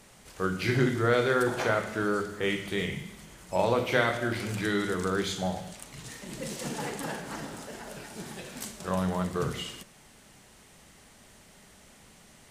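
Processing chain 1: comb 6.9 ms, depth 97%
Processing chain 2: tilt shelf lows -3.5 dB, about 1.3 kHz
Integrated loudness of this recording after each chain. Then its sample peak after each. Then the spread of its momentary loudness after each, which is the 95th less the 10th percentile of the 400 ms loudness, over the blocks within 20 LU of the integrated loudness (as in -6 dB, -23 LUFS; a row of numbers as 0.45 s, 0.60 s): -27.5 LUFS, -31.0 LUFS; -8.5 dBFS, -9.5 dBFS; 16 LU, 15 LU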